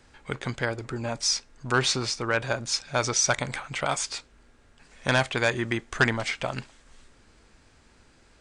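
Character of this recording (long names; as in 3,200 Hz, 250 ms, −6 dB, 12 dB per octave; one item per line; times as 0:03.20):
background noise floor −59 dBFS
spectral slope −3.0 dB per octave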